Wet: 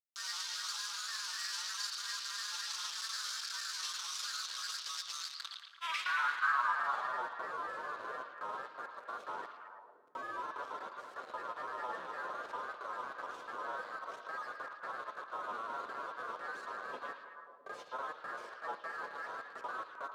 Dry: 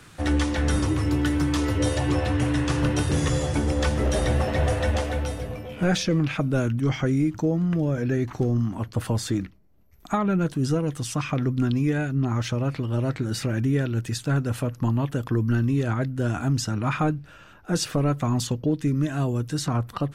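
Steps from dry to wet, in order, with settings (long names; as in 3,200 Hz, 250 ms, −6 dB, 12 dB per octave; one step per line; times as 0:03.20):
Chebyshev band-stop filter 300–1,700 Hz, order 4
reverb reduction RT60 0.62 s
high-pass filter 41 Hz 6 dB per octave
ring modulation 1,300 Hz
tuned comb filter 160 Hz, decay 0.81 s, harmonics all, mix 60%
log-companded quantiser 2 bits
granular cloud, spray 38 ms, pitch spread up and down by 3 semitones
band-pass filter sweep 5,200 Hz → 530 Hz, 0:05.18–0:07.28
on a send: echo through a band-pass that steps 111 ms, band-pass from 3,500 Hz, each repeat −0.7 octaves, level −3 dB
on the sum: dense smooth reverb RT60 1.9 s, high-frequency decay 0.7×, DRR 12 dB
level +1 dB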